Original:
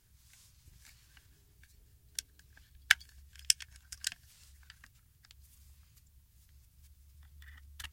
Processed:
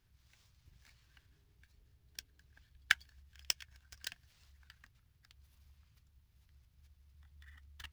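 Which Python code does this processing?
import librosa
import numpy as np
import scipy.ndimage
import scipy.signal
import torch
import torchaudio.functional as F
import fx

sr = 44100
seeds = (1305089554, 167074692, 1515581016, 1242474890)

y = scipy.signal.medfilt(x, 5)
y = F.gain(torch.from_numpy(y), -4.0).numpy()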